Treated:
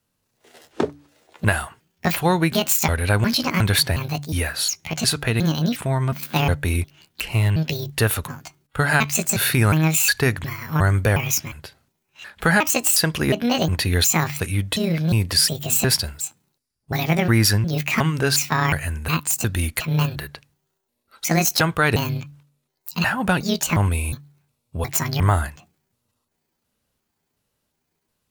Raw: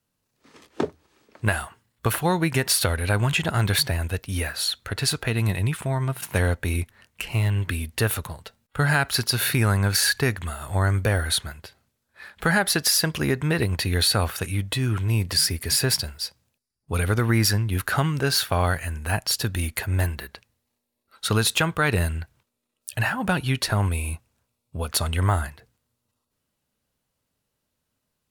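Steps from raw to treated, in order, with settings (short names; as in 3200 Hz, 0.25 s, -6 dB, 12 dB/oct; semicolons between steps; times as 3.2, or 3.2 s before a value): trilling pitch shifter +8 st, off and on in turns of 0.36 s; de-hum 144.3 Hz, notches 2; gain +3.5 dB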